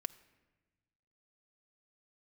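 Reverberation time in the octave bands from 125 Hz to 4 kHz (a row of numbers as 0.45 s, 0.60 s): 2.0 s, 1.7 s, 1.3 s, 1.1 s, 1.2 s, 0.80 s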